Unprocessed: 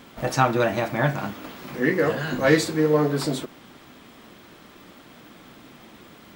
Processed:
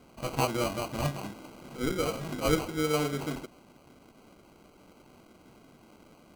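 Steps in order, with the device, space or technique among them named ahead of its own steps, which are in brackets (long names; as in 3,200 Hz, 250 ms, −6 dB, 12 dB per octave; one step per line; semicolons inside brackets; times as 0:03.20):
crushed at another speed (tape speed factor 0.8×; decimation without filtering 31×; tape speed factor 1.25×)
level −8.5 dB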